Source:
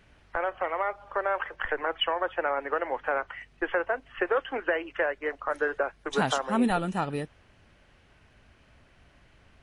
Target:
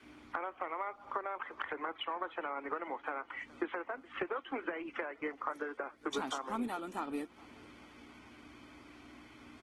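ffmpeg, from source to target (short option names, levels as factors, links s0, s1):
-filter_complex "[0:a]aeval=exprs='val(0)+0.00141*(sin(2*PI*60*n/s)+sin(2*PI*2*60*n/s)/2+sin(2*PI*3*60*n/s)/3+sin(2*PI*4*60*n/s)/4+sin(2*PI*5*60*n/s)/5)':c=same,acompressor=threshold=0.00891:ratio=5,highpass=f=75:w=0.5412,highpass=f=75:w=1.3066,lowshelf=f=210:t=q:w=3:g=-9.5,aecho=1:1:0.9:0.46,asplit=2[s0][s1];[s1]aecho=0:1:420|840|1260:0.0668|0.0341|0.0174[s2];[s0][s2]amix=inputs=2:normalize=0,adynamicequalizer=threshold=0.001:dfrequency=140:dqfactor=0.91:tfrequency=140:tqfactor=0.91:attack=5:release=100:ratio=0.375:range=3:mode=cutabove:tftype=bell,volume=1.58" -ar 48000 -c:a libopus -b:a 16k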